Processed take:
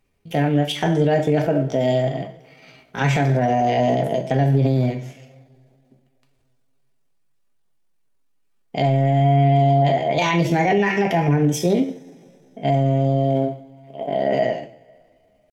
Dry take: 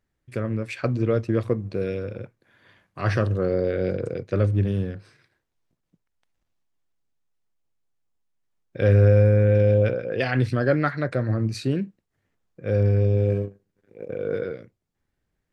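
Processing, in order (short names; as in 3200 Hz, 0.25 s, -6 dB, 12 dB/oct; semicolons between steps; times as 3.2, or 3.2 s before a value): two-slope reverb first 0.44 s, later 2.7 s, from -26 dB, DRR 2.5 dB; limiter -16.5 dBFS, peak gain reduction 12 dB; pitch shift +5 st; gain +7 dB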